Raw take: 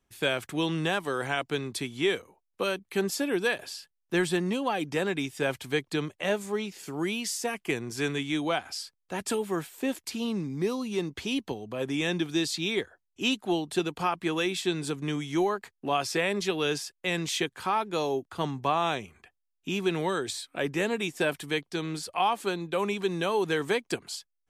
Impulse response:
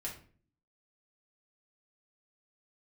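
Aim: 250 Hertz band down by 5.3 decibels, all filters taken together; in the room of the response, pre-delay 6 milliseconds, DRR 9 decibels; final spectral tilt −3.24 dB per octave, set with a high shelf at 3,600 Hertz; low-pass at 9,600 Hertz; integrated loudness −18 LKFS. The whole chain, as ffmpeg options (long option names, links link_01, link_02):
-filter_complex "[0:a]lowpass=9600,equalizer=frequency=250:width_type=o:gain=-8,highshelf=frequency=3600:gain=-7,asplit=2[link_01][link_02];[1:a]atrim=start_sample=2205,adelay=6[link_03];[link_02][link_03]afir=irnorm=-1:irlink=0,volume=-8.5dB[link_04];[link_01][link_04]amix=inputs=2:normalize=0,volume=14dB"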